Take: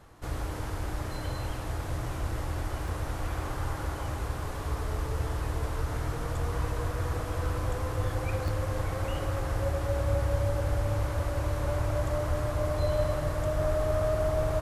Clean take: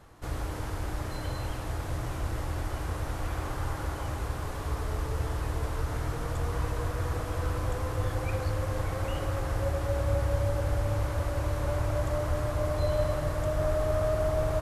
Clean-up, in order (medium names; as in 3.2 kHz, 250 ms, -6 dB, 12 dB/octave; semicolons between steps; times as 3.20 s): interpolate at 2.88/5.05/8.48 s, 1 ms